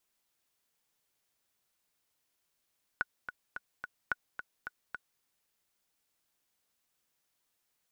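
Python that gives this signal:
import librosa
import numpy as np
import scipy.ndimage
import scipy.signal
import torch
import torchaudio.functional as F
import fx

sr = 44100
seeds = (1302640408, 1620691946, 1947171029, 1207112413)

y = fx.click_track(sr, bpm=217, beats=4, bars=2, hz=1470.0, accent_db=9.5, level_db=-16.5)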